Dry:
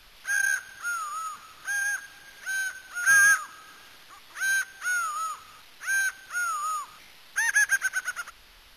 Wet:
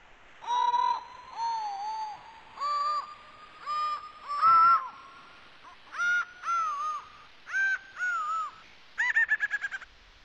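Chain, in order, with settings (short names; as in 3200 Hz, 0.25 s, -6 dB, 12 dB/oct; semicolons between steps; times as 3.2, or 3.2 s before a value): speed glide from 57% -> 114%; air absorption 160 m; treble ducked by the level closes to 2600 Hz, closed at -21 dBFS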